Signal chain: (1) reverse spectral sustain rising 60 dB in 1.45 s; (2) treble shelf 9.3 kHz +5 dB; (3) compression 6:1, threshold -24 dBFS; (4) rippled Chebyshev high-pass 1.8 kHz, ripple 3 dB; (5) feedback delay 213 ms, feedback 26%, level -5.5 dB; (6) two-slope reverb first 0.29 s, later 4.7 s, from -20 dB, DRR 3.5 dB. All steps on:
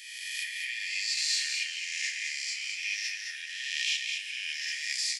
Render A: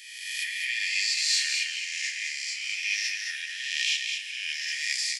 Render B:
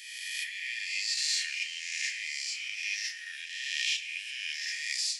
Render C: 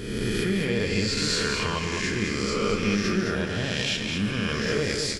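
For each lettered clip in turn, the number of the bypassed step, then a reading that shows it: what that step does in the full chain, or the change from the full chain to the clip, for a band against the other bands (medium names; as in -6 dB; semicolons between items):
3, mean gain reduction 3.0 dB; 5, echo-to-direct -0.5 dB to -3.5 dB; 4, loudness change +5.5 LU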